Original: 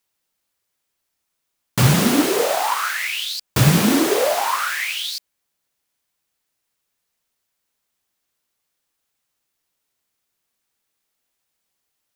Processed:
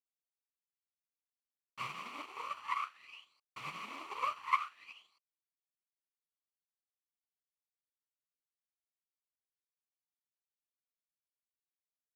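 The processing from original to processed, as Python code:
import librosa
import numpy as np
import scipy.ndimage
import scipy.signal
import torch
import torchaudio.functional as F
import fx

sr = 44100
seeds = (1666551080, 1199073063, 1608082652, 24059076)

y = fx.lower_of_two(x, sr, delay_ms=0.68)
y = fx.double_bandpass(y, sr, hz=1600.0, octaves=1.0)
y = fx.upward_expand(y, sr, threshold_db=-45.0, expansion=2.5)
y = y * 10.0 ** (1.0 / 20.0)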